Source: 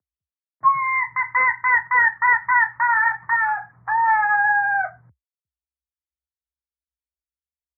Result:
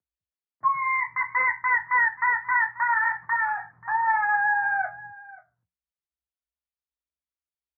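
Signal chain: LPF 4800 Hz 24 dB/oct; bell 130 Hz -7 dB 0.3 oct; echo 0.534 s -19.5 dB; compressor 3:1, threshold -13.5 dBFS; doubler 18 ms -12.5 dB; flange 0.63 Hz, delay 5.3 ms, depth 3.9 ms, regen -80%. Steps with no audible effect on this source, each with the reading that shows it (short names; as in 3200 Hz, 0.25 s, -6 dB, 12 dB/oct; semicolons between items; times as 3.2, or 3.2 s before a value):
LPF 4800 Hz: input band ends at 2200 Hz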